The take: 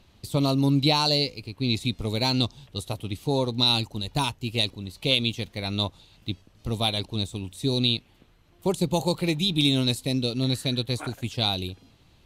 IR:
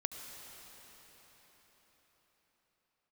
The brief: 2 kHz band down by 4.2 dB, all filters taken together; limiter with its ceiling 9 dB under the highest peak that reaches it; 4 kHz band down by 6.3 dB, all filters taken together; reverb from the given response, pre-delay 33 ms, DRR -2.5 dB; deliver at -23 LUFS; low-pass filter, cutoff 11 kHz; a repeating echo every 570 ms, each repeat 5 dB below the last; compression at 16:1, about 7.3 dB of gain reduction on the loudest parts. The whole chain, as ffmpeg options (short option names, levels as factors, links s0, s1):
-filter_complex "[0:a]lowpass=11000,equalizer=f=2000:t=o:g=-3,equalizer=f=4000:t=o:g=-6,acompressor=threshold=0.0562:ratio=16,alimiter=level_in=1.19:limit=0.0631:level=0:latency=1,volume=0.841,aecho=1:1:570|1140|1710|2280|2850|3420|3990:0.562|0.315|0.176|0.0988|0.0553|0.031|0.0173,asplit=2[s0][s1];[1:a]atrim=start_sample=2205,adelay=33[s2];[s1][s2]afir=irnorm=-1:irlink=0,volume=1.26[s3];[s0][s3]amix=inputs=2:normalize=0,volume=2.37"